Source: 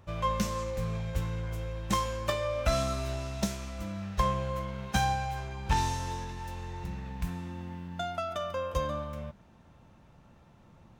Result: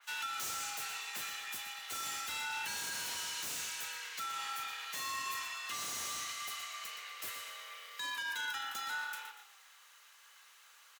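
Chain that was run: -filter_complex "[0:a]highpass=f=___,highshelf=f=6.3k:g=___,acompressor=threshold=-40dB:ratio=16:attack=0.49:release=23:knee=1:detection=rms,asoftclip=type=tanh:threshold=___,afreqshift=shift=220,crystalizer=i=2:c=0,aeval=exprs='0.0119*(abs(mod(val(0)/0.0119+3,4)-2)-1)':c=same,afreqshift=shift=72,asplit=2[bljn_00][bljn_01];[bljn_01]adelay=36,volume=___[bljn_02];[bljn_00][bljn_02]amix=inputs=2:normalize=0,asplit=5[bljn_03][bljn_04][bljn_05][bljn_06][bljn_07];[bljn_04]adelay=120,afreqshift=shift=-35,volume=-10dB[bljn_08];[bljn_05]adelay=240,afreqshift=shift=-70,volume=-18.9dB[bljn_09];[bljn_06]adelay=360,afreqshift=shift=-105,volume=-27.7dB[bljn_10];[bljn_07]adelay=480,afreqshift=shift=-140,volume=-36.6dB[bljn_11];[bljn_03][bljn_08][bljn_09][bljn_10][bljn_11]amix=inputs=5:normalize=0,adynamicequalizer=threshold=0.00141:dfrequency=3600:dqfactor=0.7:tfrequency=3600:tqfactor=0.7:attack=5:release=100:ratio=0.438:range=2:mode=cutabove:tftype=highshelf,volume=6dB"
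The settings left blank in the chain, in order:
1.4k, 3, -37dB, -13dB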